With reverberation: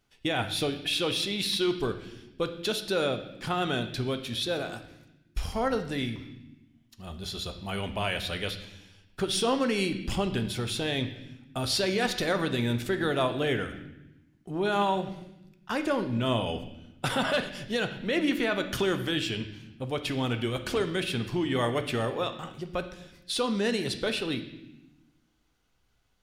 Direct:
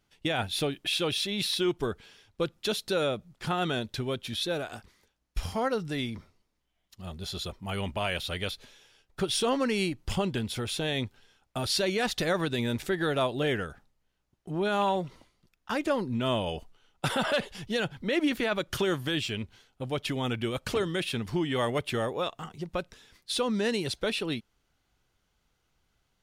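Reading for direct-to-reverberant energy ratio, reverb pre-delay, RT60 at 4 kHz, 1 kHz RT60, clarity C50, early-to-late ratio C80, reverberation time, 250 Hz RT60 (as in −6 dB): 7.0 dB, 3 ms, 0.90 s, 0.80 s, 10.5 dB, 12.5 dB, 0.95 s, 1.5 s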